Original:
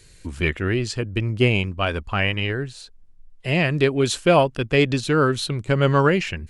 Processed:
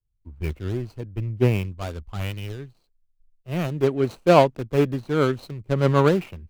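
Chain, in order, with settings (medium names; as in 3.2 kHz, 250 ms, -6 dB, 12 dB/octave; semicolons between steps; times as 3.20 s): median filter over 25 samples; three bands expanded up and down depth 100%; trim -2.5 dB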